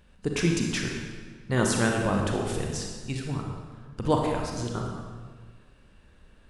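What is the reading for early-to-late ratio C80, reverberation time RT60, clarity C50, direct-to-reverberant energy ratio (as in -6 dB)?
4.0 dB, 1.6 s, 2.0 dB, 0.5 dB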